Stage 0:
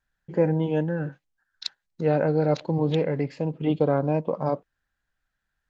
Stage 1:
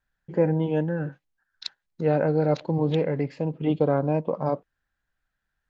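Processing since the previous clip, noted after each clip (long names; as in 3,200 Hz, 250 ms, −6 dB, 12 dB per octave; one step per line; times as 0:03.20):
high-shelf EQ 5,100 Hz −6 dB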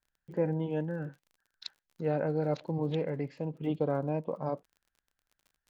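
surface crackle 26 per second −42 dBFS
level −8 dB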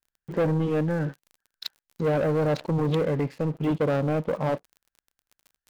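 leveller curve on the samples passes 3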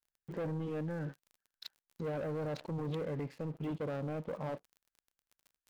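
brickwall limiter −24 dBFS, peak gain reduction 6.5 dB
level −8.5 dB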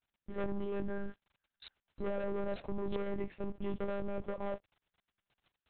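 one-pitch LPC vocoder at 8 kHz 200 Hz
level +1.5 dB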